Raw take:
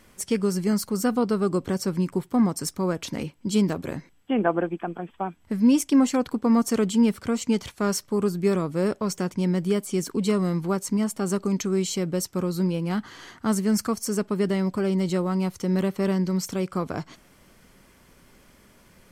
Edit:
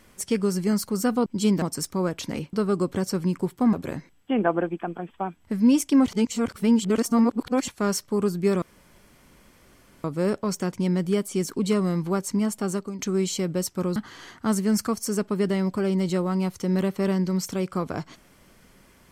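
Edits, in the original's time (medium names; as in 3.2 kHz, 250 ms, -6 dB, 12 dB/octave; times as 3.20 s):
1.26–2.46 s: swap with 3.37–3.73 s
6.06–7.68 s: reverse
8.62 s: insert room tone 1.42 s
11.22–11.57 s: fade out, to -14 dB
12.54–12.96 s: delete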